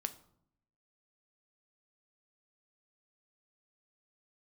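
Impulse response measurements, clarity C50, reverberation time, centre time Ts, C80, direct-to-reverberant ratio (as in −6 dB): 15.5 dB, 0.70 s, 5 ms, 19.0 dB, 9.0 dB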